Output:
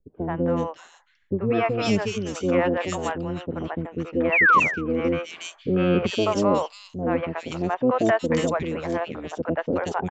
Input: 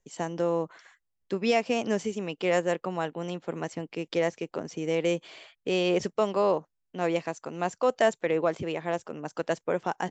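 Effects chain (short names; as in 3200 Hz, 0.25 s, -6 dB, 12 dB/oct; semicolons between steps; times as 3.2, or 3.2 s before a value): harmoniser -12 st -6 dB; low-pass opened by the level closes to 670 Hz, open at -20.5 dBFS; painted sound fall, 4.24–4.52, 980–2800 Hz -19 dBFS; three bands offset in time lows, mids, highs 80/360 ms, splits 550/2500 Hz; gain +5 dB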